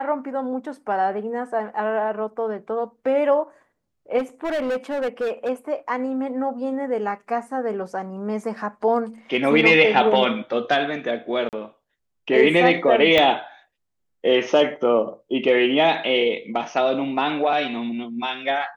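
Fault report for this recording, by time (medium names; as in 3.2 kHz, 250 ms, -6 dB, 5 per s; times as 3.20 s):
4.18–5.50 s: clipped -20.5 dBFS
11.49–11.53 s: dropout 38 ms
13.18 s: pop -6 dBFS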